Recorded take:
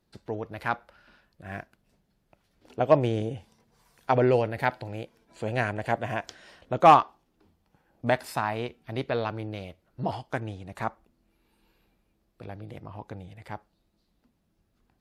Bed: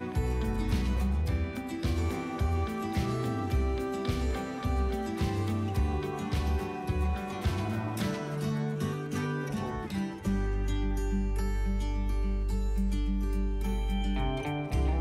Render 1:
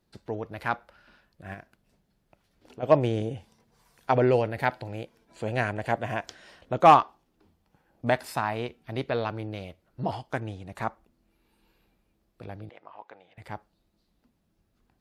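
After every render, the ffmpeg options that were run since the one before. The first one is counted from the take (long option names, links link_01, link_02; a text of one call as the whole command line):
ffmpeg -i in.wav -filter_complex "[0:a]asplit=3[link_01][link_02][link_03];[link_01]afade=type=out:start_time=1.53:duration=0.02[link_04];[link_02]acompressor=threshold=-42dB:ratio=2.5:attack=3.2:release=140:knee=1:detection=peak,afade=type=in:start_time=1.53:duration=0.02,afade=type=out:start_time=2.82:duration=0.02[link_05];[link_03]afade=type=in:start_time=2.82:duration=0.02[link_06];[link_04][link_05][link_06]amix=inputs=3:normalize=0,asettb=1/sr,asplit=3[link_07][link_08][link_09];[link_07]atrim=end=12.694[link_10];[link_08]atrim=start=12.69:end=13.38,asetpts=PTS-STARTPTS,afade=type=in:duration=0.004:curve=qsin,afade=type=out:start_time=0.686:duration=0.004:curve=qsin,highpass=680,lowpass=3000[link_11];[link_09]atrim=start=13.376[link_12];[link_10][link_11]acrossfade=duration=0.004:curve1=hsin:curve2=qsin[link_13];[link_13][link_12]acrossfade=duration=0.004:curve1=qsin:curve2=hsin" out.wav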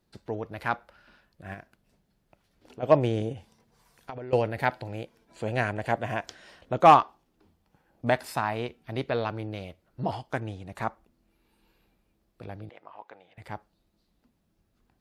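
ffmpeg -i in.wav -filter_complex "[0:a]asettb=1/sr,asplit=3[link_01][link_02][link_03];[link_01]atrim=end=3.324[link_04];[link_02]atrim=start=3.32:end=4.33,asetpts=PTS-STARTPTS,afade=type=in:duration=0.004:curve=qsin,afade=type=out:start_time=1.006:duration=0.004:curve=qsin,acompressor=threshold=-35dB:ratio=10:attack=3.2:release=140:knee=1:detection=peak[link_05];[link_03]atrim=start=4.326[link_06];[link_04][link_05]acrossfade=duration=0.004:curve1=hsin:curve2=qsin[link_07];[link_07][link_06]acrossfade=duration=0.004:curve1=qsin:curve2=hsin" out.wav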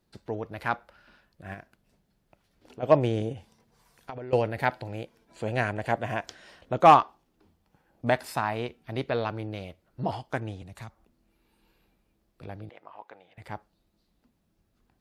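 ffmpeg -i in.wav -filter_complex "[0:a]asettb=1/sr,asplit=3[link_01][link_02][link_03];[link_01]atrim=end=10.624[link_04];[link_02]atrim=start=10.62:end=12.43,asetpts=PTS-STARTPTS,afade=type=in:duration=0.004:curve=qsin,afade=type=out:start_time=1.806:duration=0.004:curve=qsin,acrossover=split=140|3000[link_05][link_06][link_07];[link_06]acompressor=threshold=-50dB:ratio=3:attack=3.2:release=140:knee=2.83:detection=peak[link_08];[link_05][link_08][link_07]amix=inputs=3:normalize=0[link_09];[link_03]atrim=start=12.426[link_10];[link_04][link_09]acrossfade=duration=0.004:curve1=hsin:curve2=qsin[link_11];[link_11][link_10]acrossfade=duration=0.004:curve1=qsin:curve2=hsin" out.wav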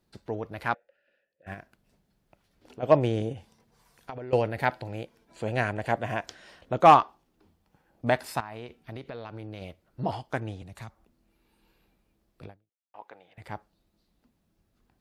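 ffmpeg -i in.wav -filter_complex "[0:a]asplit=3[link_01][link_02][link_03];[link_01]afade=type=out:start_time=0.73:duration=0.02[link_04];[link_02]asplit=3[link_05][link_06][link_07];[link_05]bandpass=frequency=530:width_type=q:width=8,volume=0dB[link_08];[link_06]bandpass=frequency=1840:width_type=q:width=8,volume=-6dB[link_09];[link_07]bandpass=frequency=2480:width_type=q:width=8,volume=-9dB[link_10];[link_08][link_09][link_10]amix=inputs=3:normalize=0,afade=type=in:start_time=0.73:duration=0.02,afade=type=out:start_time=1.46:duration=0.02[link_11];[link_03]afade=type=in:start_time=1.46:duration=0.02[link_12];[link_04][link_11][link_12]amix=inputs=3:normalize=0,asettb=1/sr,asplit=3[link_13][link_14][link_15];[link_13]atrim=end=8.404[link_16];[link_14]atrim=start=8.4:end=9.62,asetpts=PTS-STARTPTS,afade=type=in:duration=0.004:curve=qsin,afade=type=out:start_time=1.216:duration=0.004:curve=qsin,acompressor=threshold=-35dB:ratio=10:attack=3.2:release=140:knee=1:detection=peak[link_17];[link_15]atrim=start=9.616[link_18];[link_16][link_17]acrossfade=duration=0.004:curve1=hsin:curve2=qsin[link_19];[link_19][link_18]acrossfade=duration=0.004:curve1=qsin:curve2=hsin,asplit=2[link_20][link_21];[link_20]atrim=end=12.94,asetpts=PTS-STARTPTS,afade=type=out:start_time=12.46:duration=0.48:curve=exp[link_22];[link_21]atrim=start=12.94,asetpts=PTS-STARTPTS,afade=type=in:duration=0.004:curve=hsin[link_23];[link_22][link_23]concat=n=2:v=0:a=1" out.wav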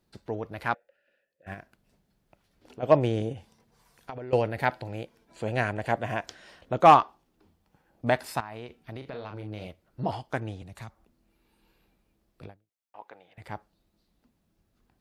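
ffmpeg -i in.wav -filter_complex "[0:a]asettb=1/sr,asplit=3[link_01][link_02][link_03];[link_01]atrim=end=8.984[link_04];[link_02]atrim=start=8.98:end=9.67,asetpts=PTS-STARTPTS,afade=type=in:duration=0.004:curve=qsin,afade=type=out:start_time=0.686:duration=0.004:curve=qsin,asplit=2[link_05][link_06];[link_06]adelay=38,volume=-6dB[link_07];[link_05][link_07]amix=inputs=2:normalize=0,atrim=end_sample=30429[link_08];[link_03]atrim=start=9.666[link_09];[link_04][link_08]acrossfade=duration=0.004:curve1=hsin:curve2=qsin[link_10];[link_10][link_09]acrossfade=duration=0.004:curve1=qsin:curve2=hsin" out.wav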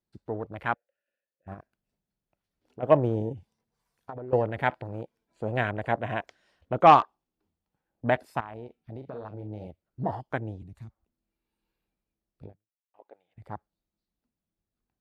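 ffmpeg -i in.wav -af "afwtdn=0.0112" out.wav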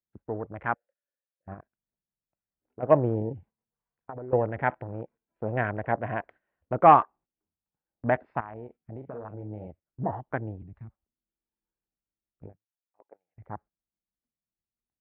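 ffmpeg -i in.wav -af "agate=range=-12dB:threshold=-51dB:ratio=16:detection=peak,lowpass=frequency=2100:width=0.5412,lowpass=frequency=2100:width=1.3066" out.wav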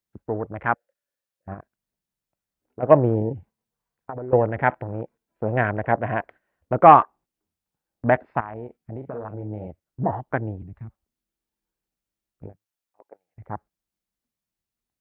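ffmpeg -i in.wav -af "volume=6dB,alimiter=limit=-1dB:level=0:latency=1" out.wav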